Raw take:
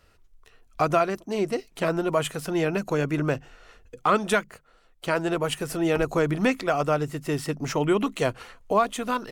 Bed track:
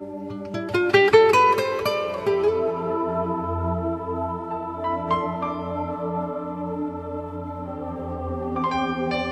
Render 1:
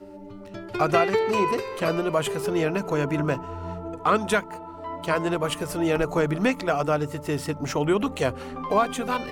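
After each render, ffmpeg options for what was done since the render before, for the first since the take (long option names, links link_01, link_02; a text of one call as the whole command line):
ffmpeg -i in.wav -i bed.wav -filter_complex "[1:a]volume=-9dB[link_01];[0:a][link_01]amix=inputs=2:normalize=0" out.wav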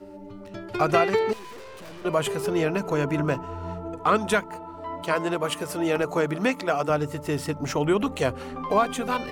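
ffmpeg -i in.wav -filter_complex "[0:a]asettb=1/sr,asplit=3[link_01][link_02][link_03];[link_01]atrim=end=1.334[link_04];[link_02]atrim=start=1.33:end=2.05,asetpts=PTS-STARTPTS,afade=type=in:duration=0.004:curve=qsin,afade=type=out:start_time=0.716:duration=0.004:curve=qsin,aeval=exprs='(tanh(112*val(0)+0.7)-tanh(0.7))/112':channel_layout=same[link_05];[link_03]atrim=start=2.046[link_06];[link_04][link_05]acrossfade=duration=0.004:curve1=hsin:curve2=qsin[link_07];[link_07][link_06]acrossfade=duration=0.004:curve1=qsin:curve2=hsin,asettb=1/sr,asplit=3[link_08][link_09][link_10];[link_08]atrim=end=5.034[link_11];[link_09]atrim=start=5.03:end=6.9,asetpts=PTS-STARTPTS,afade=type=in:duration=0.004:curve=qsin,afade=type=out:start_time=1.866:duration=0.004:curve=qsin,highpass=frequency=200:poles=1[link_12];[link_10]atrim=start=6.896[link_13];[link_11][link_12]acrossfade=duration=0.004:curve1=hsin:curve2=qsin[link_14];[link_14][link_13]acrossfade=duration=0.004:curve1=qsin:curve2=hsin" out.wav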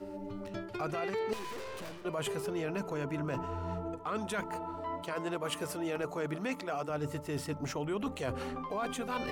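ffmpeg -i in.wav -af "alimiter=limit=-16dB:level=0:latency=1:release=21,areverse,acompressor=threshold=-34dB:ratio=4,areverse" out.wav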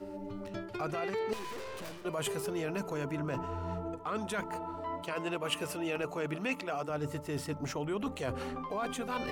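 ffmpeg -i in.wav -filter_complex "[0:a]asettb=1/sr,asplit=3[link_01][link_02][link_03];[link_01]atrim=end=1.844[link_04];[link_02]atrim=start=1.84:end=3.12,asetpts=PTS-STARTPTS,afade=type=in:duration=0.004:curve=qsin,afade=type=out:start_time=1.276:duration=0.004:curve=qsin,highshelf=frequency=5700:gain=6[link_05];[link_03]atrim=start=3.116[link_06];[link_04][link_05]acrossfade=duration=0.004:curve1=hsin:curve2=qsin[link_07];[link_07][link_06]acrossfade=duration=0.004:curve1=qsin:curve2=hsin,asettb=1/sr,asplit=3[link_08][link_09][link_10];[link_08]atrim=end=5.074[link_11];[link_09]atrim=start=5.07:end=6.71,asetpts=PTS-STARTPTS,afade=type=in:duration=0.004:curve=qsin,afade=type=out:start_time=1.636:duration=0.004:curve=qsin,equalizer=frequency=2700:width_type=o:width=0.28:gain=9[link_12];[link_10]atrim=start=6.706[link_13];[link_11][link_12]acrossfade=duration=0.004:curve1=hsin:curve2=qsin[link_14];[link_14][link_13]acrossfade=duration=0.004:curve1=qsin:curve2=hsin" out.wav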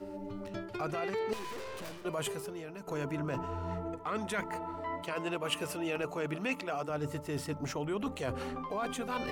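ffmpeg -i in.wav -filter_complex "[0:a]asettb=1/sr,asplit=3[link_01][link_02][link_03];[link_01]atrim=end=3.714[link_04];[link_02]atrim=start=3.71:end=5.08,asetpts=PTS-STARTPTS,afade=type=in:duration=0.004:curve=qsin,afade=type=out:start_time=1.366:duration=0.004:curve=qsin,equalizer=frequency=2000:width=5.1:gain=8[link_05];[link_03]atrim=start=5.076[link_06];[link_04][link_05]acrossfade=duration=0.004:curve1=hsin:curve2=qsin[link_07];[link_07][link_06]acrossfade=duration=0.004:curve1=qsin:curve2=hsin,asplit=2[link_08][link_09];[link_08]atrim=end=2.87,asetpts=PTS-STARTPTS,afade=type=out:start_time=2.19:duration=0.68:curve=qua:silence=0.298538[link_10];[link_09]atrim=start=2.87,asetpts=PTS-STARTPTS,afade=type=in:duration=0.004:curve=hsin:silence=0.298538[link_11];[link_10][link_11]concat=n=2:v=0:a=1" out.wav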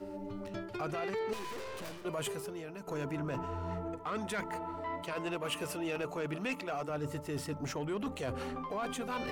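ffmpeg -i in.wav -af "asoftclip=type=tanh:threshold=-28dB" out.wav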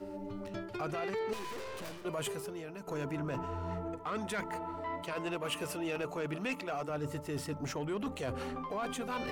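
ffmpeg -i in.wav -af anull out.wav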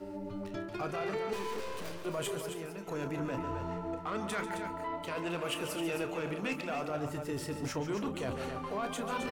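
ffmpeg -i in.wav -filter_complex "[0:a]asplit=2[link_01][link_02];[link_02]adelay=30,volume=-10.5dB[link_03];[link_01][link_03]amix=inputs=2:normalize=0,aecho=1:1:142.9|265.3:0.282|0.398" out.wav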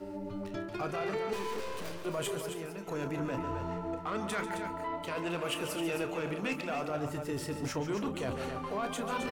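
ffmpeg -i in.wav -af "volume=1dB" out.wav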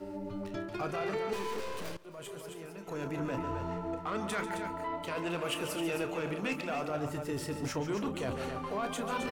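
ffmpeg -i in.wav -filter_complex "[0:a]asplit=2[link_01][link_02];[link_01]atrim=end=1.97,asetpts=PTS-STARTPTS,afade=type=out:start_time=1.966:duration=0.004:curve=hsin:silence=0.141254[link_03];[link_02]atrim=start=1.97,asetpts=PTS-STARTPTS,afade=type=in:duration=1.33:silence=0.141254[link_04];[link_03][link_04]concat=n=2:v=0:a=1" out.wav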